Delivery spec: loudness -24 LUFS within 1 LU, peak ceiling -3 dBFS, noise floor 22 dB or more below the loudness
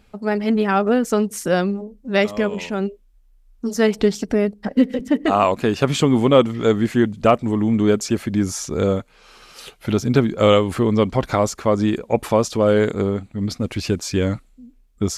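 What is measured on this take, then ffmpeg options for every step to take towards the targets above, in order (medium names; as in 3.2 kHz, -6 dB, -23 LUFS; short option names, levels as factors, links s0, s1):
loudness -19.5 LUFS; peak level -2.5 dBFS; loudness target -24.0 LUFS
-> -af "volume=0.596"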